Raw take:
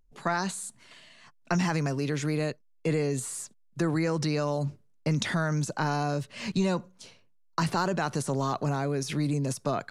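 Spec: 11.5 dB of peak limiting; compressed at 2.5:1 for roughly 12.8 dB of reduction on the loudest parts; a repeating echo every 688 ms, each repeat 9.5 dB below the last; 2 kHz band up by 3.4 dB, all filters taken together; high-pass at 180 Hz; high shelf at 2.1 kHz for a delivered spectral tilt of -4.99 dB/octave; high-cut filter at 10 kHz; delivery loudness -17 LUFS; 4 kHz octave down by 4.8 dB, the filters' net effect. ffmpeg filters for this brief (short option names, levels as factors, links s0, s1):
-af "highpass=180,lowpass=10000,equalizer=f=2000:t=o:g=7.5,highshelf=f=2100:g=-4,equalizer=f=4000:t=o:g=-4,acompressor=threshold=0.00708:ratio=2.5,alimiter=level_in=3.16:limit=0.0631:level=0:latency=1,volume=0.316,aecho=1:1:688|1376|2064|2752:0.335|0.111|0.0365|0.012,volume=22.4"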